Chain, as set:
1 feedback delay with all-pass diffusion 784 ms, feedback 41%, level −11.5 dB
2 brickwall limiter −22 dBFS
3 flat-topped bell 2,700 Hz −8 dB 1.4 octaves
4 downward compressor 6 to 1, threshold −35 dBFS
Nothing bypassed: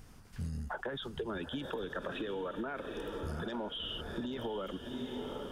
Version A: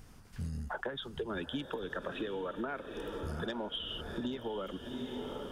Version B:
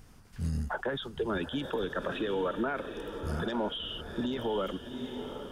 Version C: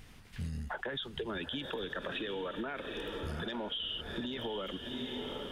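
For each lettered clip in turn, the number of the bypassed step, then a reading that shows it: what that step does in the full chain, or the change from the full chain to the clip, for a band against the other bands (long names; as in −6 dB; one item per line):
2, average gain reduction 1.5 dB
4, average gain reduction 4.0 dB
3, 4 kHz band +5.5 dB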